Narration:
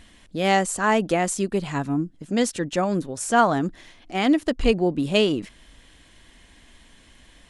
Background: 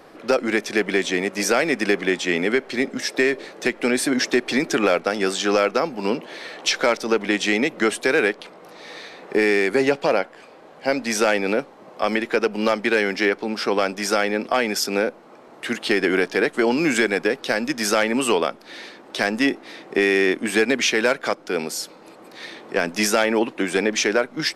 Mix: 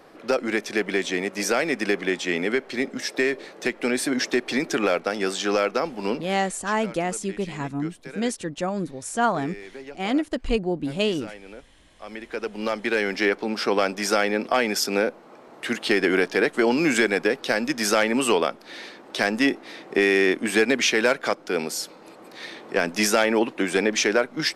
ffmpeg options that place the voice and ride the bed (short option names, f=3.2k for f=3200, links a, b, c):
-filter_complex "[0:a]adelay=5850,volume=-4dB[a];[1:a]volume=16.5dB,afade=t=out:st=6.15:d=0.48:silence=0.133352,afade=t=in:st=11.99:d=1.42:silence=0.1[b];[a][b]amix=inputs=2:normalize=0"